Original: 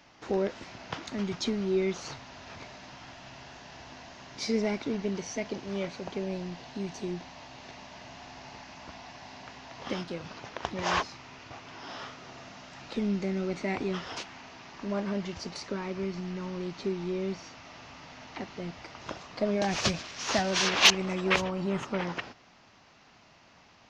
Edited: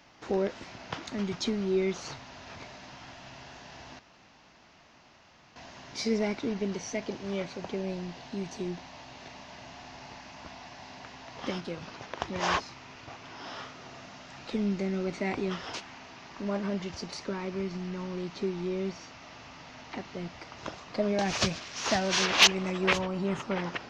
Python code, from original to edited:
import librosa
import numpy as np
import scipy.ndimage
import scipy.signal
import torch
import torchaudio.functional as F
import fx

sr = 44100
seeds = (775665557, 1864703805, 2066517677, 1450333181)

y = fx.edit(x, sr, fx.insert_room_tone(at_s=3.99, length_s=1.57), tone=tone)